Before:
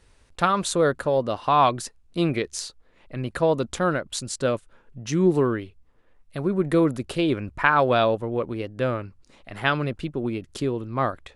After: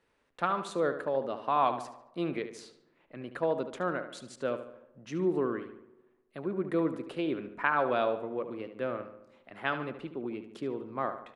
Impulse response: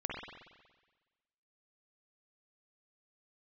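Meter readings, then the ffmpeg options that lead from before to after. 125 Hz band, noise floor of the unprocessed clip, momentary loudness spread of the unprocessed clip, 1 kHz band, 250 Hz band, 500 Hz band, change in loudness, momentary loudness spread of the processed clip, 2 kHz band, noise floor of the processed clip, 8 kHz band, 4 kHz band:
−15.5 dB, −59 dBFS, 13 LU, −8.0 dB, −9.5 dB, −8.0 dB, −8.5 dB, 15 LU, −8.5 dB, −71 dBFS, below −15 dB, −13.5 dB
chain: -filter_complex "[0:a]acrossover=split=170 3100:gain=0.1 1 0.251[link_01][link_02][link_03];[link_01][link_02][link_03]amix=inputs=3:normalize=0,asplit=2[link_04][link_05];[link_05]adelay=73,lowpass=frequency=4200:poles=1,volume=-10dB,asplit=2[link_06][link_07];[link_07]adelay=73,lowpass=frequency=4200:poles=1,volume=0.49,asplit=2[link_08][link_09];[link_09]adelay=73,lowpass=frequency=4200:poles=1,volume=0.49,asplit=2[link_10][link_11];[link_11]adelay=73,lowpass=frequency=4200:poles=1,volume=0.49,asplit=2[link_12][link_13];[link_13]adelay=73,lowpass=frequency=4200:poles=1,volume=0.49[link_14];[link_04][link_06][link_08][link_10][link_12][link_14]amix=inputs=6:normalize=0,asplit=2[link_15][link_16];[1:a]atrim=start_sample=2205,lowpass=1000,adelay=90[link_17];[link_16][link_17]afir=irnorm=-1:irlink=0,volume=-22.5dB[link_18];[link_15][link_18]amix=inputs=2:normalize=0,volume=-8.5dB"

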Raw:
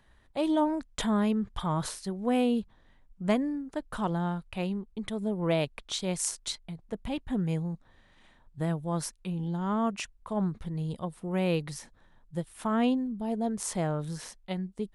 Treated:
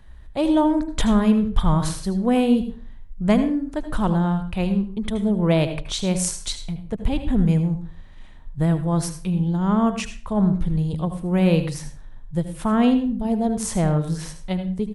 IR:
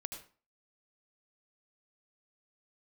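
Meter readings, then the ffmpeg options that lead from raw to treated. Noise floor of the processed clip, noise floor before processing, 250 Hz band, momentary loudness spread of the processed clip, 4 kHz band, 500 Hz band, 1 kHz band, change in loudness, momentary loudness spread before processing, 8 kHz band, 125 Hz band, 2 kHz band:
−40 dBFS, −61 dBFS, +10.0 dB, 11 LU, +6.0 dB, +7.0 dB, +6.5 dB, +9.5 dB, 11 LU, +6.0 dB, +11.5 dB, +6.0 dB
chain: -filter_complex "[0:a]lowshelf=frequency=99:gain=9.5,aecho=1:1:79:0.15,asplit=2[link_01][link_02];[1:a]atrim=start_sample=2205,lowshelf=frequency=180:gain=10[link_03];[link_02][link_03]afir=irnorm=-1:irlink=0,volume=2.5dB[link_04];[link_01][link_04]amix=inputs=2:normalize=0"

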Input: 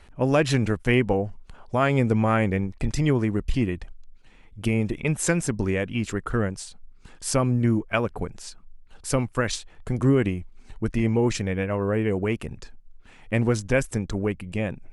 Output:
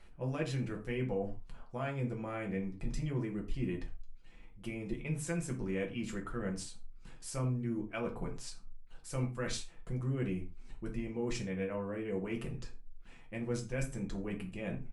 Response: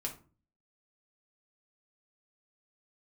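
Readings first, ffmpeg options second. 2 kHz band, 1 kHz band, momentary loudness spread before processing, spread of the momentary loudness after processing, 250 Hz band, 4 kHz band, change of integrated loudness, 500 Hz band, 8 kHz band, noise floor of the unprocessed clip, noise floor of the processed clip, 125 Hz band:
−15.0 dB, −16.5 dB, 12 LU, 11 LU, −13.0 dB, −12.5 dB, −13.5 dB, −14.0 dB, −13.5 dB, −50 dBFS, −53 dBFS, −13.0 dB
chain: -filter_complex "[0:a]areverse,acompressor=threshold=-28dB:ratio=6,areverse,aecho=1:1:81:0.0631[link_01];[1:a]atrim=start_sample=2205,atrim=end_sample=6615[link_02];[link_01][link_02]afir=irnorm=-1:irlink=0,volume=-7dB"

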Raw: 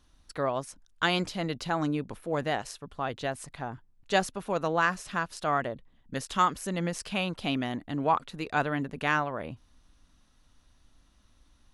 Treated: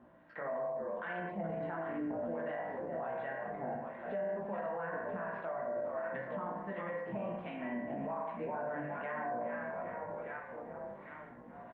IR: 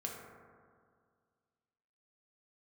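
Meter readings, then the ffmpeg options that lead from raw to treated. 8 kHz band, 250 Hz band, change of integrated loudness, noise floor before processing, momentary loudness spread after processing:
below −35 dB, −9.0 dB, −9.0 dB, −64 dBFS, 7 LU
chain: -filter_complex "[0:a]areverse,acompressor=mode=upward:threshold=-42dB:ratio=2.5,areverse,asplit=8[link_01][link_02][link_03][link_04][link_05][link_06][link_07][link_08];[link_02]adelay=404,afreqshift=-58,volume=-12dB[link_09];[link_03]adelay=808,afreqshift=-116,volume=-16.2dB[link_10];[link_04]adelay=1212,afreqshift=-174,volume=-20.3dB[link_11];[link_05]adelay=1616,afreqshift=-232,volume=-24.5dB[link_12];[link_06]adelay=2020,afreqshift=-290,volume=-28.6dB[link_13];[link_07]adelay=2424,afreqshift=-348,volume=-32.8dB[link_14];[link_08]adelay=2828,afreqshift=-406,volume=-36.9dB[link_15];[link_01][link_09][link_10][link_11][link_12][link_13][link_14][link_15]amix=inputs=8:normalize=0,flanger=delay=16.5:depth=3.5:speed=0.96,acrossover=split=970[link_16][link_17];[link_16]aeval=exprs='val(0)*(1-0.7/2+0.7/2*cos(2*PI*1.4*n/s))':channel_layout=same[link_18];[link_17]aeval=exprs='val(0)*(1-0.7/2-0.7/2*cos(2*PI*1.4*n/s))':channel_layout=same[link_19];[link_18][link_19]amix=inputs=2:normalize=0,acompressor=threshold=-57dB:ratio=2.5,highpass=200,equalizer=frequency=200:width_type=q:width=4:gain=5,equalizer=frequency=330:width_type=q:width=4:gain=-4,equalizer=frequency=510:width_type=q:width=4:gain=7,equalizer=frequency=760:width_type=q:width=4:gain=5,equalizer=frequency=1200:width_type=q:width=4:gain=-3,equalizer=frequency=1800:width_type=q:width=4:gain=4,lowpass=frequency=2100:width=0.5412,lowpass=frequency=2100:width=1.3066[link_20];[1:a]atrim=start_sample=2205,afade=type=out:start_time=0.37:duration=0.01,atrim=end_sample=16758,asetrate=61740,aresample=44100[link_21];[link_20][link_21]afir=irnorm=-1:irlink=0,alimiter=level_in=23dB:limit=-24dB:level=0:latency=1:release=29,volume=-23dB,aemphasis=mode=reproduction:type=50fm,volume=16.5dB" -ar 48000 -c:a libopus -b:a 48k

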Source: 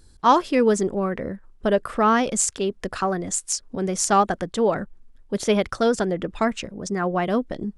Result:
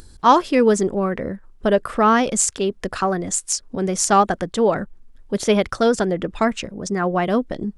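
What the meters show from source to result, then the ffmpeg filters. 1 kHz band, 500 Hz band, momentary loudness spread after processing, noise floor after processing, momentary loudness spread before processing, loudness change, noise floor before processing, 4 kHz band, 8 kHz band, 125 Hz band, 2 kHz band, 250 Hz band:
+3.0 dB, +3.0 dB, 9 LU, −48 dBFS, 9 LU, +3.0 dB, −52 dBFS, +3.0 dB, +3.0 dB, +3.0 dB, +3.0 dB, +3.0 dB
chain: -af "acompressor=mode=upward:threshold=-40dB:ratio=2.5,volume=3dB"

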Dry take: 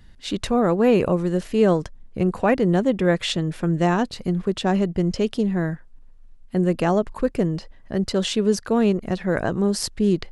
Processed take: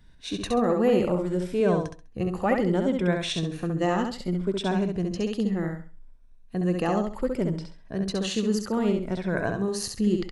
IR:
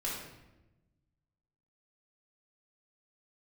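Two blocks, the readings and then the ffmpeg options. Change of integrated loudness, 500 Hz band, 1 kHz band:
−4.5 dB, −4.5 dB, −4.0 dB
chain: -af "afftfilt=real='re*pow(10,8/40*sin(2*PI*(1.6*log(max(b,1)*sr/1024/100)/log(2)-(0.65)*(pts-256)/sr)))':imag='im*pow(10,8/40*sin(2*PI*(1.6*log(max(b,1)*sr/1024/100)/log(2)-(0.65)*(pts-256)/sr)))':win_size=1024:overlap=0.75,aecho=1:1:67|134|201|268:0.596|0.155|0.0403|0.0105,volume=-6.5dB"

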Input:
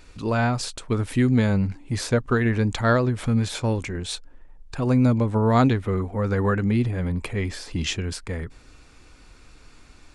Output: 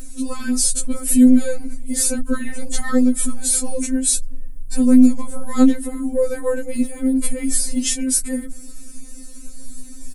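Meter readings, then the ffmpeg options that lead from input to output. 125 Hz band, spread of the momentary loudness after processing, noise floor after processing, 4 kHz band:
below −15 dB, 15 LU, −33 dBFS, +2.5 dB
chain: -af "firequalizer=gain_entry='entry(110,0);entry(880,-24);entry(1800,-18);entry(3000,-19);entry(9600,11)':delay=0.05:min_phase=1,apsyclip=28dB,afftfilt=real='re*3.46*eq(mod(b,12),0)':imag='im*3.46*eq(mod(b,12),0)':win_size=2048:overlap=0.75,volume=-8.5dB"

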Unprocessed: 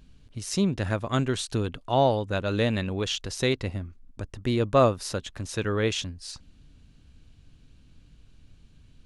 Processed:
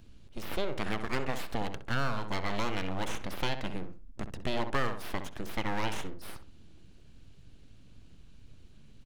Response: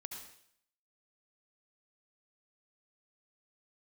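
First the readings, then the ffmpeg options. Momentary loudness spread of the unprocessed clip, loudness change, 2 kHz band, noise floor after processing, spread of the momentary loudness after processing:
17 LU, −9.0 dB, −2.0 dB, −52 dBFS, 12 LU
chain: -filter_complex "[0:a]aeval=exprs='abs(val(0))':channel_layout=same,asplit=2[link_01][link_02];[link_02]adelay=64,lowpass=frequency=1800:poles=1,volume=-9dB,asplit=2[link_03][link_04];[link_04]adelay=64,lowpass=frequency=1800:poles=1,volume=0.27,asplit=2[link_05][link_06];[link_06]adelay=64,lowpass=frequency=1800:poles=1,volume=0.27[link_07];[link_01][link_03][link_05][link_07]amix=inputs=4:normalize=0,acrossover=split=640|4100[link_08][link_09][link_10];[link_08]acompressor=threshold=-28dB:ratio=4[link_11];[link_09]acompressor=threshold=-32dB:ratio=4[link_12];[link_10]acompressor=threshold=-51dB:ratio=4[link_13];[link_11][link_12][link_13]amix=inputs=3:normalize=0"

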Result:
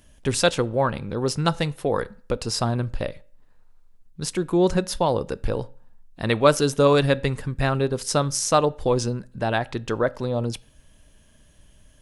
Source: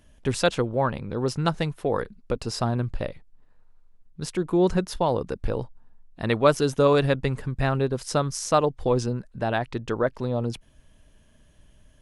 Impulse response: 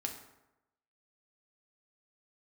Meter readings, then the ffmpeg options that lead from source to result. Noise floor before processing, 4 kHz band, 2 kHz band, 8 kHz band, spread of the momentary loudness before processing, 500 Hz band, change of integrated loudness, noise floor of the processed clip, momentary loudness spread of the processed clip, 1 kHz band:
−57 dBFS, +5.0 dB, +3.0 dB, +7.0 dB, 11 LU, +2.0 dB, +2.0 dB, −55 dBFS, 11 LU, +2.0 dB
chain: -filter_complex "[0:a]highshelf=frequency=3900:gain=7,asplit=2[link_01][link_02];[1:a]atrim=start_sample=2205,asetrate=88200,aresample=44100[link_03];[link_02][link_03]afir=irnorm=-1:irlink=0,volume=-7dB[link_04];[link_01][link_04]amix=inputs=2:normalize=0"

